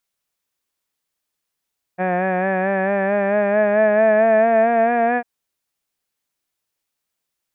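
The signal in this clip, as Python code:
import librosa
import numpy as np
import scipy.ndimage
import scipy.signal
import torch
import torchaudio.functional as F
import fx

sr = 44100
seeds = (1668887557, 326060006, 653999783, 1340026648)

y = fx.vowel(sr, seeds[0], length_s=3.25, word='had', hz=180.0, glide_st=5.0, vibrato_hz=4.5, vibrato_st=0.45)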